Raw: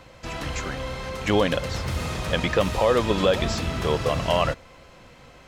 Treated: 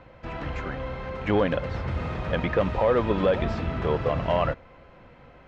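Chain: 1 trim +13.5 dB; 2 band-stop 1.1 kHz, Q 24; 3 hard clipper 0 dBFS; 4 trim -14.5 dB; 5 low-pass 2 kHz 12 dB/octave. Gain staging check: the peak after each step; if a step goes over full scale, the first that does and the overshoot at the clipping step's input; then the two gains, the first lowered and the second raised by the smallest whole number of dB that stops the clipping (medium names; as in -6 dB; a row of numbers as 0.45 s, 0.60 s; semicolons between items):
+5.0 dBFS, +5.0 dBFS, 0.0 dBFS, -14.5 dBFS, -14.0 dBFS; step 1, 5.0 dB; step 1 +8.5 dB, step 4 -9.5 dB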